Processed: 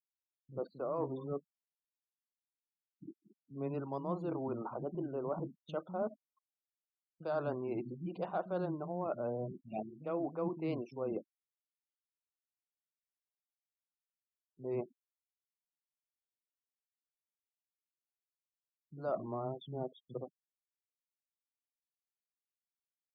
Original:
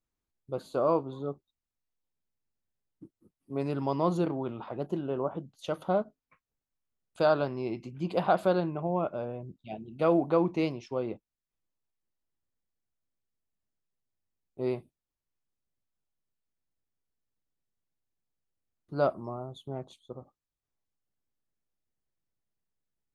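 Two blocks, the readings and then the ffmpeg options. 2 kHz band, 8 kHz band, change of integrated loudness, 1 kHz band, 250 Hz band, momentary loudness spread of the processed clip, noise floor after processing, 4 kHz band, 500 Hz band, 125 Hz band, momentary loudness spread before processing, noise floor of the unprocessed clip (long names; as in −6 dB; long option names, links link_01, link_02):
−12.0 dB, can't be measured, −9.0 dB, −9.5 dB, −8.0 dB, 9 LU, below −85 dBFS, below −10 dB, −8.5 dB, −7.5 dB, 16 LU, below −85 dBFS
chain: -filter_complex "[0:a]highpass=frequency=130:width=0.5412,highpass=frequency=130:width=1.3066,afftfilt=real='re*gte(hypot(re,im),0.00708)':imag='im*gte(hypot(re,im),0.00708)':win_size=1024:overlap=0.75,lowpass=frequency=1800:poles=1,areverse,acompressor=threshold=-37dB:ratio=6,areverse,acrossover=split=230[link_01][link_02];[link_02]adelay=50[link_03];[link_01][link_03]amix=inputs=2:normalize=0,volume=3.5dB"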